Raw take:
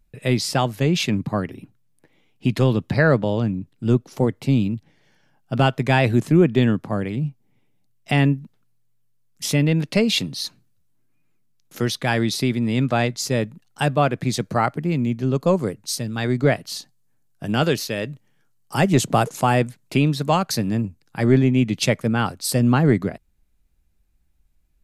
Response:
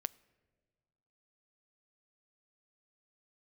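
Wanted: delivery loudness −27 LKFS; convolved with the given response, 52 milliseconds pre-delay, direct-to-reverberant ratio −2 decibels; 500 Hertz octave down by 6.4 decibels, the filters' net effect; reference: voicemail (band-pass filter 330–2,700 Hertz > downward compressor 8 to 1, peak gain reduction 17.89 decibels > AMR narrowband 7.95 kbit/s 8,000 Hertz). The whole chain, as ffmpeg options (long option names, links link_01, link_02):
-filter_complex "[0:a]equalizer=frequency=500:width_type=o:gain=-7,asplit=2[link_01][link_02];[1:a]atrim=start_sample=2205,adelay=52[link_03];[link_02][link_03]afir=irnorm=-1:irlink=0,volume=3.5dB[link_04];[link_01][link_04]amix=inputs=2:normalize=0,highpass=330,lowpass=2700,acompressor=threshold=-31dB:ratio=8,volume=9.5dB" -ar 8000 -c:a libopencore_amrnb -b:a 7950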